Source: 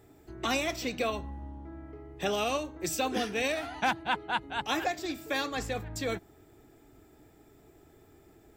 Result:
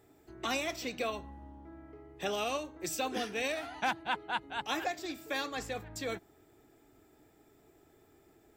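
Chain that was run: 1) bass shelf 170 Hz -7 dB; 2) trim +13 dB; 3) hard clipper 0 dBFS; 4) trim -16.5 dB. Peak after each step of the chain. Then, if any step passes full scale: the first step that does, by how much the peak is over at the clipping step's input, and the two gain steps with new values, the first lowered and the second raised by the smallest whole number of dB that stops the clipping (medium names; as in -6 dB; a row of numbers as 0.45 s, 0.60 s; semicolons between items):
-15.0 dBFS, -2.0 dBFS, -2.0 dBFS, -18.5 dBFS; nothing clips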